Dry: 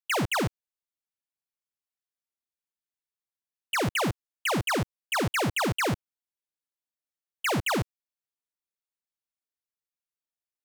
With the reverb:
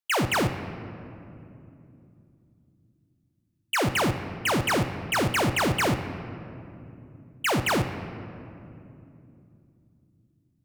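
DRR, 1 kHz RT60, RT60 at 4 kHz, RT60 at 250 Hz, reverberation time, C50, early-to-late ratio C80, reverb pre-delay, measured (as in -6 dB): 8.0 dB, 2.5 s, 1.5 s, 4.4 s, 2.9 s, 9.5 dB, 10.5 dB, 3 ms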